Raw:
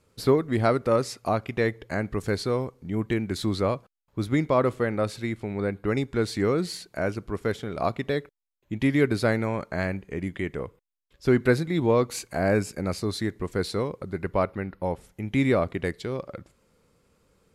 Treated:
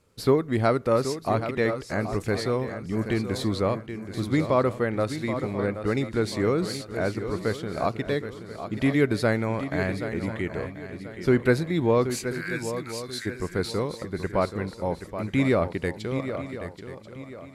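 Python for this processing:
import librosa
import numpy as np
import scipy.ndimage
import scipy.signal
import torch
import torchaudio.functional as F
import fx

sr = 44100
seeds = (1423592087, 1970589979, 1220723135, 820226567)

y = fx.steep_highpass(x, sr, hz=1400.0, slope=36, at=(12.25, 13.25), fade=0.02)
y = fx.echo_swing(y, sr, ms=1036, ratio=3, feedback_pct=33, wet_db=-10)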